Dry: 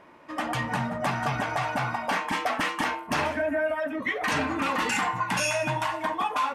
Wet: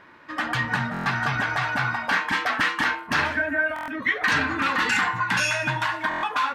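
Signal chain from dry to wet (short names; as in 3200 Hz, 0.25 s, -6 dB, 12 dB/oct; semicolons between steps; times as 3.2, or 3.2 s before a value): fifteen-band EQ 100 Hz +5 dB, 630 Hz -5 dB, 1600 Hz +10 dB, 4000 Hz +7 dB, 10000 Hz -5 dB; stuck buffer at 0.92/3.74/6.09, samples 1024, times 5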